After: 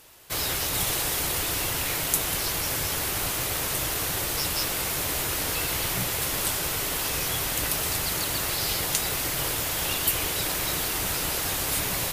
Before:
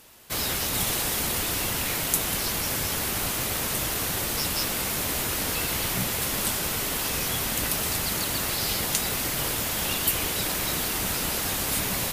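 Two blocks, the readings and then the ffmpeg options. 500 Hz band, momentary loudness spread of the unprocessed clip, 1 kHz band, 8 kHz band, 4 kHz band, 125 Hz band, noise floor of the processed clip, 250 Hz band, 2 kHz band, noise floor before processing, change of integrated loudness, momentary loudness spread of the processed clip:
0.0 dB, 2 LU, 0.0 dB, 0.0 dB, 0.0 dB, -0.5 dB, -29 dBFS, -3.0 dB, 0.0 dB, -29 dBFS, 0.0 dB, 2 LU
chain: -af "equalizer=f=220:t=o:w=0.29:g=-12"

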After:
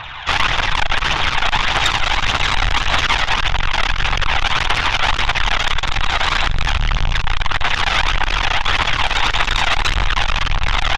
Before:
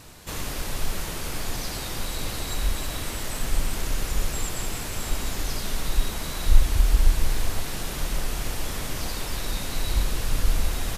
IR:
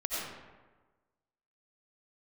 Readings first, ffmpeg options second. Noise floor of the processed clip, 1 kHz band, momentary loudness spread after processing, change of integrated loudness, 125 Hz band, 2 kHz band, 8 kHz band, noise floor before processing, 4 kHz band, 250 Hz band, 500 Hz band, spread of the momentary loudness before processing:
-22 dBFS, +19.0 dB, 3 LU, +12.0 dB, +5.5 dB, +20.0 dB, +1.0 dB, -33 dBFS, +16.0 dB, +3.5 dB, +8.0 dB, 7 LU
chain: -af "aphaser=in_gain=1:out_gain=1:delay=1.6:decay=0.43:speed=1.7:type=triangular,acontrast=27,aresample=8000,asoftclip=type=tanh:threshold=-17dB,aresample=44100,firequalizer=gain_entry='entry(140,0);entry(220,-21);entry(810,15)':delay=0.05:min_phase=1,aeval=exprs='0.531*(cos(1*acos(clip(val(0)/0.531,-1,1)))-cos(1*PI/2))+0.133*(cos(4*acos(clip(val(0)/0.531,-1,1)))-cos(4*PI/2))':c=same,aecho=1:1:163:0.075,volume=2dB"

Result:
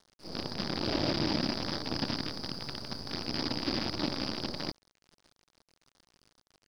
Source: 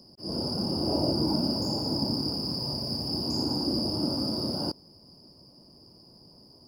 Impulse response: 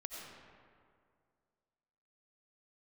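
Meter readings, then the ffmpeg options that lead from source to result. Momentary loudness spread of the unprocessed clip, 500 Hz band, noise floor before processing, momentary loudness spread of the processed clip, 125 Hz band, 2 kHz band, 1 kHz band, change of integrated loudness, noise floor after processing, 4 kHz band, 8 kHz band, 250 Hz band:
5 LU, -5.0 dB, -55 dBFS, 9 LU, -6.0 dB, n/a, -1.5 dB, -5.0 dB, under -85 dBFS, -5.0 dB, -3.5 dB, -6.0 dB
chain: -af "aresample=11025,acrusher=bits=5:dc=4:mix=0:aa=0.000001,aresample=44100,aeval=exprs='sgn(val(0))*max(abs(val(0))-0.00299,0)':c=same,volume=-4dB"

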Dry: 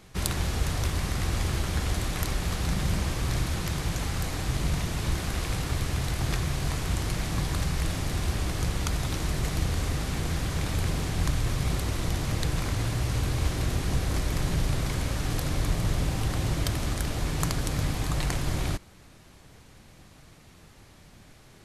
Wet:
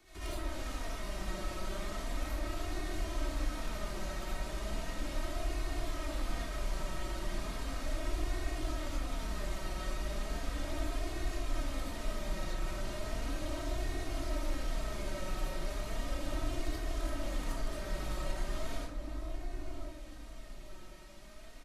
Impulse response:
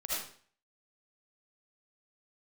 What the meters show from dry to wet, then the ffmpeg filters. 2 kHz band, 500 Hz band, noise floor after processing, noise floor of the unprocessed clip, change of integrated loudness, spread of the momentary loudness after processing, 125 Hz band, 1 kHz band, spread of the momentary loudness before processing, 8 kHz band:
-8.5 dB, -4.5 dB, -47 dBFS, -53 dBFS, -10.5 dB, 5 LU, -15.5 dB, -7.0 dB, 2 LU, -12.0 dB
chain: -filter_complex "[0:a]lowshelf=f=220:g=-5.5,aecho=1:1:3.2:0.43,acrossover=split=250|1300|3000[a][b][c][d];[a]acompressor=threshold=-35dB:ratio=4[e];[b]acompressor=threshold=-43dB:ratio=4[f];[c]acompressor=threshold=-52dB:ratio=4[g];[d]acompressor=threshold=-50dB:ratio=4[h];[e][f][g][h]amix=inputs=4:normalize=0,asplit=2[i][j];[j]adelay=1047,lowpass=f=830:p=1,volume=-4dB,asplit=2[k][l];[l]adelay=1047,lowpass=f=830:p=1,volume=0.41,asplit=2[m][n];[n]adelay=1047,lowpass=f=830:p=1,volume=0.41,asplit=2[o][p];[p]adelay=1047,lowpass=f=830:p=1,volume=0.41,asplit=2[q][r];[r]adelay=1047,lowpass=f=830:p=1,volume=0.41[s];[i][k][m][o][q][s]amix=inputs=6:normalize=0,flanger=delay=2.7:depth=2.7:regen=18:speed=0.36:shape=sinusoidal[t];[1:a]atrim=start_sample=2205,asetrate=43659,aresample=44100[u];[t][u]afir=irnorm=-1:irlink=0,acrossover=split=3300[v][w];[w]aeval=exprs='clip(val(0),-1,0.00794)':c=same[x];[v][x]amix=inputs=2:normalize=0,volume=-2.5dB"

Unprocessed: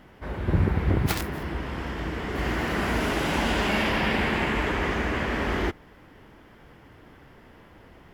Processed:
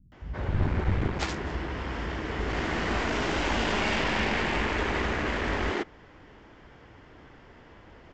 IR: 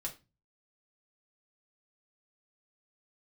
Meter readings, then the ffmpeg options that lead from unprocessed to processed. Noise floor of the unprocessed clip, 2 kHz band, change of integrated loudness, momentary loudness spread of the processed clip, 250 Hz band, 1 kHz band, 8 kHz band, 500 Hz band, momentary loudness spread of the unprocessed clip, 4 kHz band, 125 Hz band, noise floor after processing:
-52 dBFS, -2.0 dB, -2.5 dB, 8 LU, -4.0 dB, -1.5 dB, -2.5 dB, -2.0 dB, 9 LU, -1.0 dB, -3.5 dB, -53 dBFS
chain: -filter_complex "[0:a]aresample=16000,aeval=exprs='clip(val(0),-1,0.0376)':c=same,aresample=44100,acrossover=split=180[a][b];[b]adelay=120[c];[a][c]amix=inputs=2:normalize=0"

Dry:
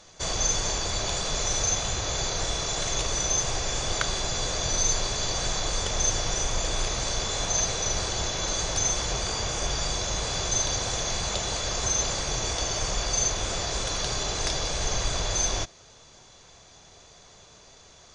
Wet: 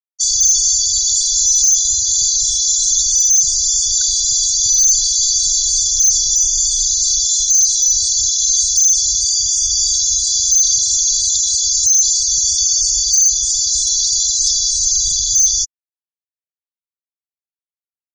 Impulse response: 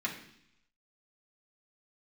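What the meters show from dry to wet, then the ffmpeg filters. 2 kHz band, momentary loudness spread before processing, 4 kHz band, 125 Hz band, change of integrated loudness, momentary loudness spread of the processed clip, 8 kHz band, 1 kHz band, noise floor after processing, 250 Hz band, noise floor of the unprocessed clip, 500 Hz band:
under -20 dB, 4 LU, +11.5 dB, n/a, +15.0 dB, 3 LU, +17.5 dB, under -40 dB, under -85 dBFS, under -25 dB, -53 dBFS, under -40 dB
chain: -af "aexciter=amount=7.1:drive=8.5:freq=3.9k,asoftclip=type=tanh:threshold=-8dB,afftfilt=real='re*gte(hypot(re,im),0.178)':imag='im*gte(hypot(re,im),0.178)':win_size=1024:overlap=0.75"

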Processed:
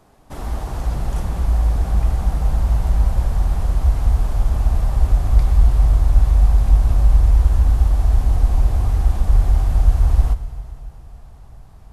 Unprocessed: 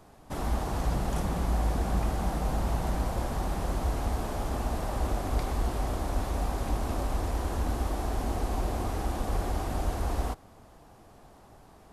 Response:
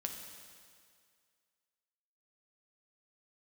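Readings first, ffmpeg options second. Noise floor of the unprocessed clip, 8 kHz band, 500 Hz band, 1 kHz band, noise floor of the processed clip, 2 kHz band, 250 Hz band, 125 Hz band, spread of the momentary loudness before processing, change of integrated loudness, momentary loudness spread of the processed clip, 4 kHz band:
-54 dBFS, +1.5 dB, -0.5 dB, +0.5 dB, -41 dBFS, +1.0 dB, +1.0 dB, +14.0 dB, 3 LU, +13.0 dB, 9 LU, +1.5 dB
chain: -filter_complex "[0:a]asubboost=boost=7.5:cutoff=110,asplit=2[a][b];[1:a]atrim=start_sample=2205,asetrate=30429,aresample=44100[c];[b][c]afir=irnorm=-1:irlink=0,volume=-5.5dB[d];[a][d]amix=inputs=2:normalize=0,volume=-2.5dB"

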